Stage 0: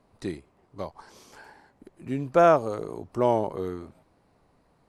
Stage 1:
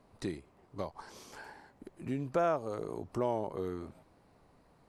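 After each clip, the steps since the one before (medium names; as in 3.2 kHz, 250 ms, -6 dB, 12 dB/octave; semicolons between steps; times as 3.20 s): compression 2:1, threshold -36 dBFS, peak gain reduction 12.5 dB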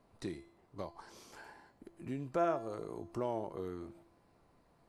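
feedback comb 340 Hz, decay 0.59 s, mix 70%; trim +5.5 dB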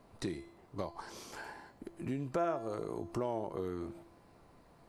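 compression 2:1, threshold -43 dBFS, peak gain reduction 9 dB; trim +7 dB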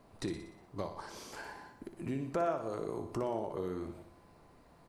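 feedback delay 60 ms, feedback 59%, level -9.5 dB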